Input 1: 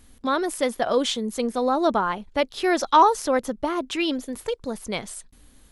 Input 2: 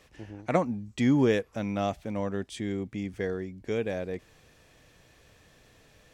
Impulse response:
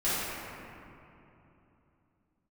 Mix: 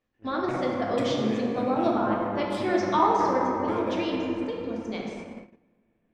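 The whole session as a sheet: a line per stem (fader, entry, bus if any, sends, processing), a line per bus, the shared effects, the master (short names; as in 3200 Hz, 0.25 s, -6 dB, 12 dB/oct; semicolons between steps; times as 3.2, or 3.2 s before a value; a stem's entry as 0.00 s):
-13.0 dB, 0.00 s, send -5 dB, elliptic band-pass 150–5800 Hz, stop band 40 dB; reverb removal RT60 1.5 s; low shelf 310 Hz +7.5 dB
-4.5 dB, 0.00 s, send -6.5 dB, Wiener smoothing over 9 samples; notch 6400 Hz, Q 6; compressor, threshold -31 dBFS, peak gain reduction 12 dB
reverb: on, RT60 3.0 s, pre-delay 3 ms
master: gate -38 dBFS, range -21 dB; notches 50/100/150/200 Hz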